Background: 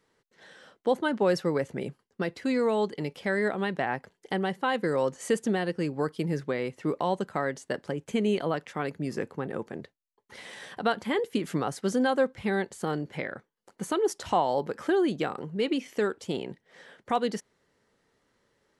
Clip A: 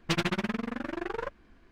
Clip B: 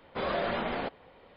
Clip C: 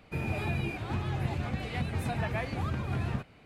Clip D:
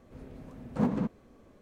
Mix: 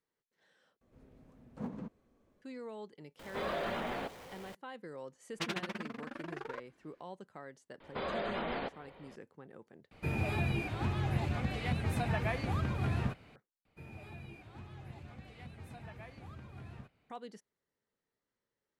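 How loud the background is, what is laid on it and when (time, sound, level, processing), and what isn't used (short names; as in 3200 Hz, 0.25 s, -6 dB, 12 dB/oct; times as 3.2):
background -19.5 dB
0.81 replace with D -13.5 dB
3.19 add B -6.5 dB + zero-crossing step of -41 dBFS
5.31 add A -7.5 dB + HPF 300 Hz 6 dB/oct
7.8 add B -0.5 dB + limiter -28 dBFS
9.91 replace with C -1 dB
13.65 replace with C -17 dB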